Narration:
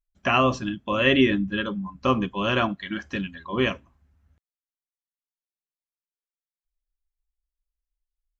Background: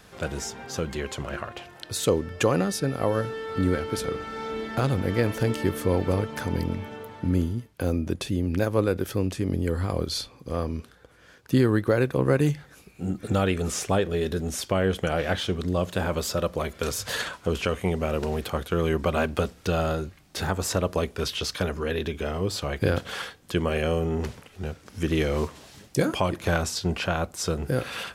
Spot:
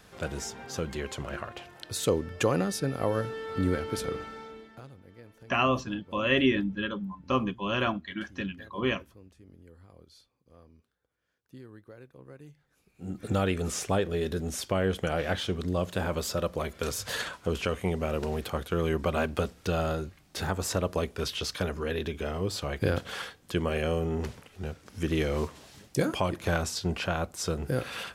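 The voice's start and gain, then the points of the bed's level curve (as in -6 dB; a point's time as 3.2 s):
5.25 s, -5.0 dB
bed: 4.2 s -3.5 dB
4.98 s -27.5 dB
12.52 s -27.5 dB
13.23 s -3.5 dB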